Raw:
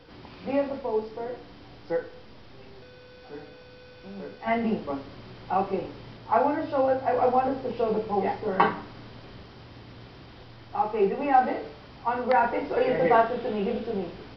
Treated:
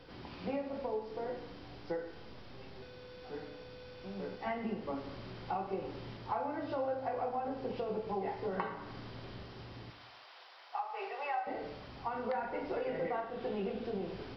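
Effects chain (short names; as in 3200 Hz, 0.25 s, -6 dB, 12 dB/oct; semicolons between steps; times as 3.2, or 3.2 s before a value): 9.9–11.47 HPF 670 Hz 24 dB/oct; compressor 8:1, threshold -31 dBFS, peak gain reduction 16 dB; non-linear reverb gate 0.36 s falling, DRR 8 dB; gain -3 dB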